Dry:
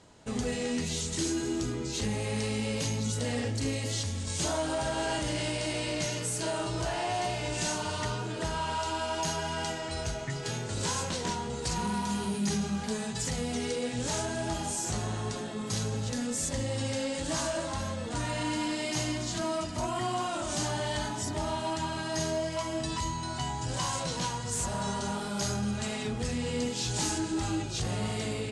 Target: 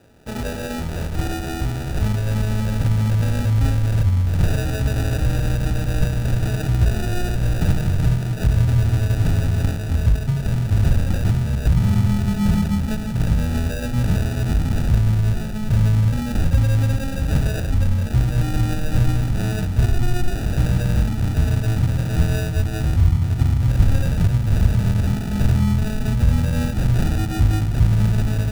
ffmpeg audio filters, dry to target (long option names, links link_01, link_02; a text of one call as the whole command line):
ffmpeg -i in.wav -af "acrusher=samples=41:mix=1:aa=0.000001,asubboost=boost=8.5:cutoff=130,volume=4.5dB" out.wav